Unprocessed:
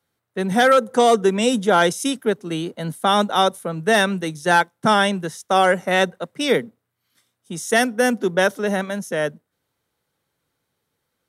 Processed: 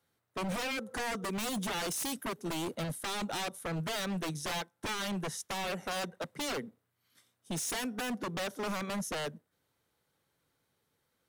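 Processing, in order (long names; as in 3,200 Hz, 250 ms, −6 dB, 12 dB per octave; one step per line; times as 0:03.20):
0:01.24–0:02.75: high-shelf EQ 6,100 Hz +9.5 dB
downward compressor 4 to 1, threshold −24 dBFS, peak gain reduction 12 dB
wave folding −27 dBFS
level −3 dB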